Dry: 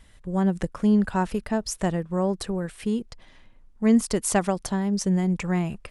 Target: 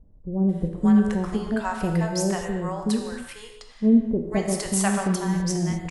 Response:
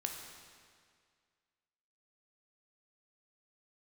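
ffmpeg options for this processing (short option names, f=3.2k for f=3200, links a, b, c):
-filter_complex "[0:a]acrossover=split=620[a][b];[b]adelay=490[c];[a][c]amix=inputs=2:normalize=0[d];[1:a]atrim=start_sample=2205,afade=t=out:st=0.31:d=0.01,atrim=end_sample=14112[e];[d][e]afir=irnorm=-1:irlink=0,volume=2dB"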